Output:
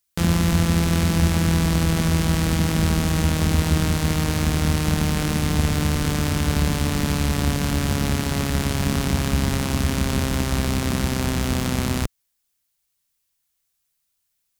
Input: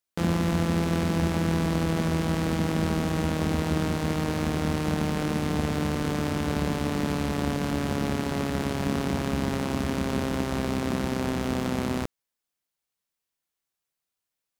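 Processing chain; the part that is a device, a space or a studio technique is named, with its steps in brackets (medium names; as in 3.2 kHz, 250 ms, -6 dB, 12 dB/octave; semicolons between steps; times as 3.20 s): smiley-face EQ (bass shelf 130 Hz +8.5 dB; peaking EQ 410 Hz -7 dB 3 oct; treble shelf 5.1 kHz +7 dB); trim +6.5 dB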